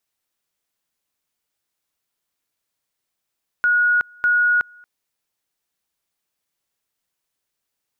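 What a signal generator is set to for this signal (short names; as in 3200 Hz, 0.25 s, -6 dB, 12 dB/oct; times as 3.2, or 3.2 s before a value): two-level tone 1450 Hz -13.5 dBFS, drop 29.5 dB, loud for 0.37 s, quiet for 0.23 s, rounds 2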